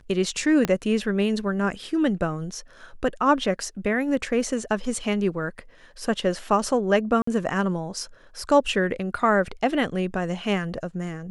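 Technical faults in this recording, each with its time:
0:00.65: click −9 dBFS
0:07.22–0:07.27: drop-out 54 ms

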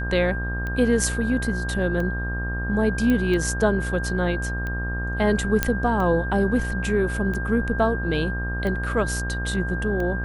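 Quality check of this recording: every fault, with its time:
mains buzz 60 Hz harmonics 28 −28 dBFS
scratch tick 45 rpm −19 dBFS
whistle 1,600 Hz −30 dBFS
0:03.10: click −12 dBFS
0:05.63: click −4 dBFS

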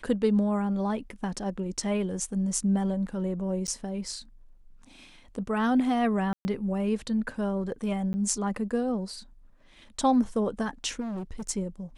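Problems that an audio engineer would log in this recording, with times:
0:03.67–0:03.68: drop-out 9.2 ms
0:06.33–0:06.45: drop-out 120 ms
0:08.13–0:08.14: drop-out 10 ms
0:11.00–0:11.50: clipping −31.5 dBFS

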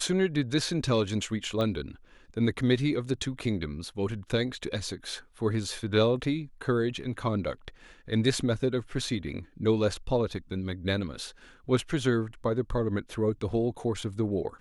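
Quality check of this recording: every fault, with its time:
0:01.61: click −19 dBFS

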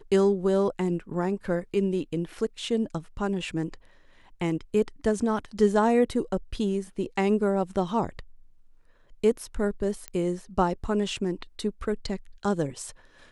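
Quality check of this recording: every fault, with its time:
0:10.08: click −18 dBFS

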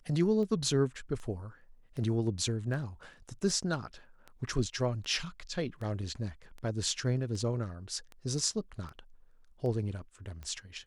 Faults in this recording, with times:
scratch tick 78 rpm −31 dBFS

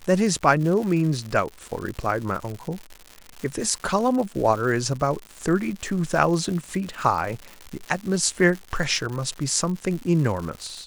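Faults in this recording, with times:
surface crackle 200 per second −30 dBFS

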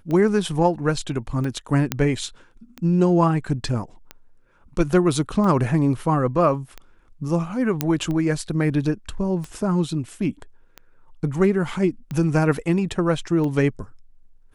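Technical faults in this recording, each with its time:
scratch tick 45 rpm −18 dBFS
0:01.92: click −5 dBFS
0:07.81: click −5 dBFS

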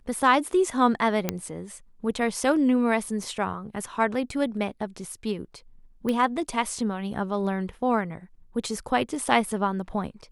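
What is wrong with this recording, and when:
0:01.29: click −9 dBFS
0:06.09: click −16 dBFS

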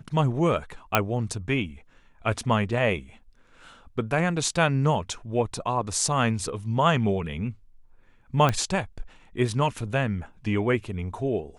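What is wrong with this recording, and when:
0:00.95: click −4 dBFS
0:08.49: click −10 dBFS

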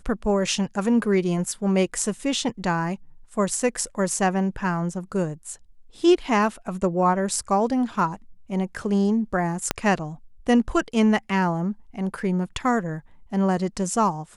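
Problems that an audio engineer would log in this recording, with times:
0:09.71: click −5 dBFS

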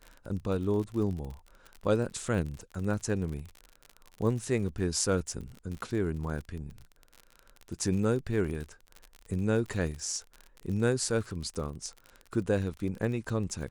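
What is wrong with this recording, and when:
surface crackle 45 per second −36 dBFS

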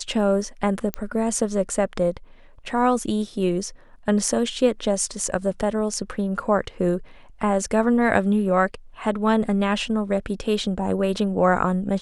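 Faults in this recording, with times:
0:00.94: click −10 dBFS

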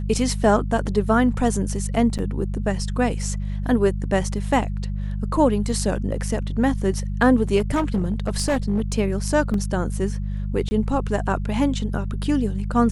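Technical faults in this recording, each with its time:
mains hum 50 Hz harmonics 4 −26 dBFS
0:02.18–0:02.19: drop-out 8.1 ms
0:07.58–0:08.98: clipping −16.5 dBFS
0:09.54: drop-out 2.3 ms
0:10.69–0:10.71: drop-out 20 ms

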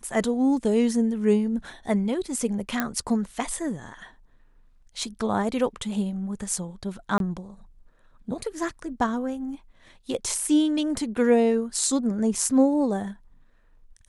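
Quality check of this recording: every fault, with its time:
0:02.80: click −9 dBFS
0:07.18–0:07.20: drop-out 22 ms

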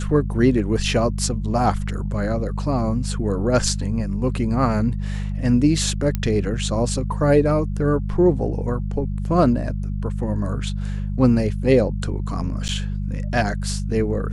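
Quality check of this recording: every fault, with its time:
mains hum 50 Hz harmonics 4 −25 dBFS
0:06.15: click −10 dBFS
0:12.68–0:12.69: drop-out 9.6 ms

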